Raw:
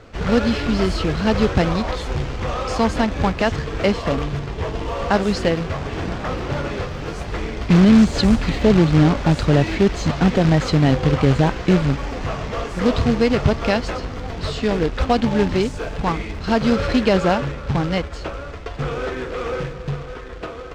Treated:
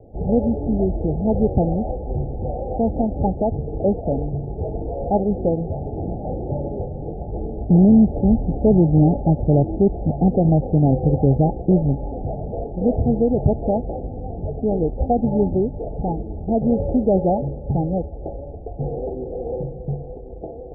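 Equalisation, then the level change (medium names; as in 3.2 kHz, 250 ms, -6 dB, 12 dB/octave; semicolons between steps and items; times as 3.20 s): Chebyshev low-pass 850 Hz, order 10; 0.0 dB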